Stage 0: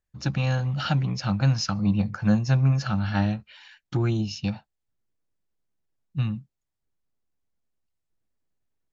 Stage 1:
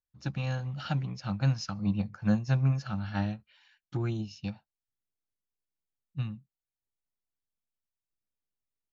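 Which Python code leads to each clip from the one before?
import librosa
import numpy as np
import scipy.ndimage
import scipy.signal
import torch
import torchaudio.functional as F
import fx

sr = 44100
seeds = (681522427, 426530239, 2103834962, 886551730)

y = fx.upward_expand(x, sr, threshold_db=-35.0, expansion=1.5)
y = y * librosa.db_to_amplitude(-4.5)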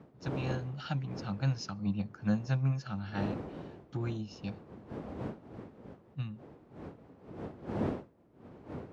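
y = fx.dmg_wind(x, sr, seeds[0], corner_hz=380.0, level_db=-39.0)
y = scipy.signal.sosfilt(scipy.signal.butter(2, 85.0, 'highpass', fs=sr, output='sos'), y)
y = y * librosa.db_to_amplitude(-3.5)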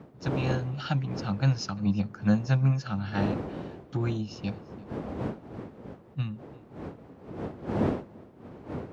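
y = x + 10.0 ** (-23.5 / 20.0) * np.pad(x, (int(344 * sr / 1000.0), 0))[:len(x)]
y = y * librosa.db_to_amplitude(6.5)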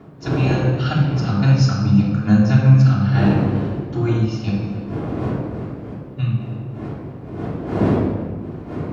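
y = fx.room_shoebox(x, sr, seeds[1], volume_m3=1800.0, walls='mixed', distance_m=3.2)
y = y * librosa.db_to_amplitude(3.5)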